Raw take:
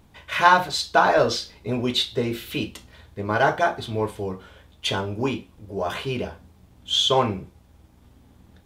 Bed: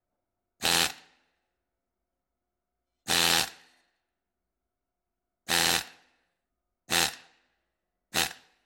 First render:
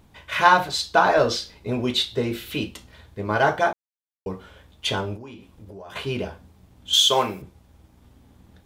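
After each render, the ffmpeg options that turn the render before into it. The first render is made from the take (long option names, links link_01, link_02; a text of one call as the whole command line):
ffmpeg -i in.wav -filter_complex "[0:a]asettb=1/sr,asplit=3[link_01][link_02][link_03];[link_01]atrim=end=5.164[link_04];[link_02]atrim=start=5.16:end=5.96,asetpts=PTS-STARTPTS,afade=type=in:duration=0.004:curve=qsin,afade=type=out:start_time=0.796:duration=0.004:curve=qsin,acompressor=threshold=-37dB:ratio=8:attack=3.2:release=140:knee=1:detection=peak[link_05];[link_03]atrim=start=5.956[link_06];[link_04][link_05]acrossfade=duration=0.004:curve1=hsin:curve2=qsin[link_07];[link_07][link_06]acrossfade=duration=0.004:curve1=qsin:curve2=hsin,asettb=1/sr,asplit=3[link_08][link_09][link_10];[link_08]atrim=end=6.934[link_11];[link_09]atrim=start=6.93:end=7.42,asetpts=PTS-STARTPTS,afade=type=in:duration=0.004:curve=qsin,afade=type=out:start_time=0.486:duration=0.004:curve=qsin,aemphasis=mode=production:type=bsi[link_12];[link_10]atrim=start=7.416[link_13];[link_11][link_12]acrossfade=duration=0.004:curve1=hsin:curve2=qsin[link_14];[link_14][link_13]acrossfade=duration=0.004:curve1=qsin:curve2=hsin,asplit=3[link_15][link_16][link_17];[link_15]atrim=end=3.73,asetpts=PTS-STARTPTS,afade=type=out:start_time=3.726:duration=0.004:curve=hsin[link_18];[link_16]atrim=start=3.73:end=4.26,asetpts=PTS-STARTPTS,volume=0[link_19];[link_17]atrim=start=4.26,asetpts=PTS-STARTPTS,afade=type=in:duration=0.004:curve=hsin[link_20];[link_18][link_19][link_20]concat=n=3:v=0:a=1" out.wav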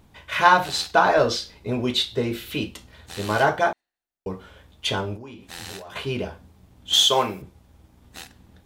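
ffmpeg -i in.wav -i bed.wav -filter_complex "[1:a]volume=-13.5dB[link_01];[0:a][link_01]amix=inputs=2:normalize=0" out.wav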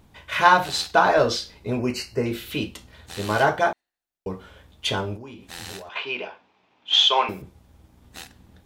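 ffmpeg -i in.wav -filter_complex "[0:a]asettb=1/sr,asplit=3[link_01][link_02][link_03];[link_01]atrim=end=1.794[link_04];[link_02]atrim=start=1.79:end=2.26,asetpts=PTS-STARTPTS,afade=type=in:duration=0.004:curve=qsin,afade=type=out:start_time=0.466:duration=0.004:curve=qsin,asuperstop=centerf=3500:order=8:qfactor=2.4[link_05];[link_03]atrim=start=2.256[link_06];[link_04][link_05]acrossfade=duration=0.004:curve1=hsin:curve2=qsin[link_07];[link_07][link_06]acrossfade=duration=0.004:curve1=qsin:curve2=hsin,asettb=1/sr,asplit=3[link_08][link_09][link_10];[link_08]atrim=end=5.894[link_11];[link_09]atrim=start=5.89:end=7.29,asetpts=PTS-STARTPTS,afade=type=in:duration=0.004:curve=qsin,afade=type=out:start_time=1.396:duration=0.004:curve=qsin,highpass=490,equalizer=frequency=550:width_type=q:width=4:gain=-3,equalizer=frequency=930:width_type=q:width=4:gain=4,equalizer=frequency=2500:width_type=q:width=4:gain=8,equalizer=frequency=4400:width_type=q:width=4:gain=-3,lowpass=frequency=4800:width=0.5412,lowpass=frequency=4800:width=1.3066[link_12];[link_10]atrim=start=7.286[link_13];[link_11][link_12]acrossfade=duration=0.004:curve1=hsin:curve2=qsin[link_14];[link_14][link_13]acrossfade=duration=0.004:curve1=qsin:curve2=hsin" out.wav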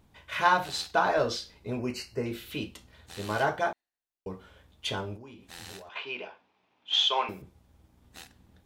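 ffmpeg -i in.wav -af "volume=-7.5dB" out.wav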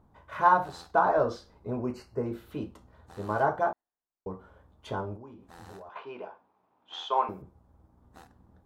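ffmpeg -i in.wav -af "highshelf=frequency=1700:width_type=q:width=1.5:gain=-13.5" out.wav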